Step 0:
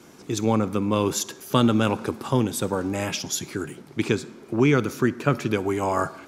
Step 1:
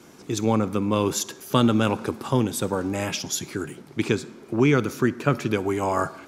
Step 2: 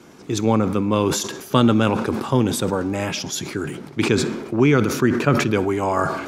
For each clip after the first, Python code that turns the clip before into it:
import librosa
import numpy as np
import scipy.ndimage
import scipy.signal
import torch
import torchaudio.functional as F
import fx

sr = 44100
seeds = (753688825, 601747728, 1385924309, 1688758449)

y1 = x
y2 = fx.high_shelf(y1, sr, hz=6300.0, db=-7.5)
y2 = fx.sustainer(y2, sr, db_per_s=54.0)
y2 = y2 * librosa.db_to_amplitude(3.0)